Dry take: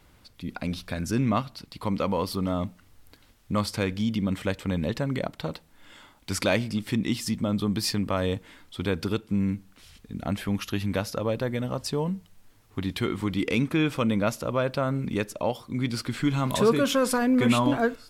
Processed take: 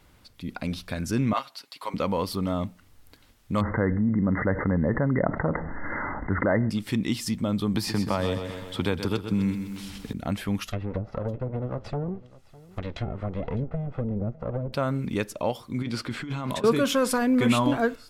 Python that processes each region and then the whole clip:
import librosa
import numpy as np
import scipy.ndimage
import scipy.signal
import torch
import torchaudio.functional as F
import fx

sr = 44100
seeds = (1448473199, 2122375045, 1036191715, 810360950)

y = fx.chain(x, sr, fx.highpass(hz=680.0, slope=12),
    fx.comb(ms=7.4, depth=0.55), at=(1.33, 1.94))
y = fx.chain(y, sr, fx.brickwall_lowpass(high_hz=2100.0),
    fx.env_flatten(amount_pct=70), at=(3.61, 6.7))
y = fx.chain(y, sr, fx.peak_eq(hz=870.0, db=5.5, octaves=0.38),
    fx.echo_feedback(ms=127, feedback_pct=45, wet_db=-10.0),
    fx.band_squash(depth_pct=70), at=(7.74, 10.13))
y = fx.chain(y, sr, fx.lower_of_two(delay_ms=1.5),
    fx.env_lowpass_down(base_hz=330.0, full_db=-23.0),
    fx.echo_single(ms=606, db=-20.5), at=(10.67, 14.73))
y = fx.chain(y, sr, fx.lowpass(hz=3300.0, slope=6),
    fx.low_shelf(hz=150.0, db=-7.0),
    fx.over_compress(threshold_db=-31.0, ratio=-1.0), at=(15.82, 16.64))